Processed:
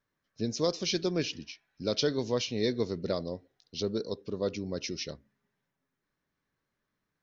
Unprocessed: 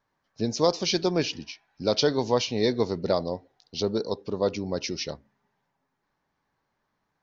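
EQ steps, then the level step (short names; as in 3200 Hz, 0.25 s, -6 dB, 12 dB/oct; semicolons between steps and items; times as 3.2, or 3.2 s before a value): bell 840 Hz -11.5 dB 0.7 oct; notch 4600 Hz, Q 23; -4.0 dB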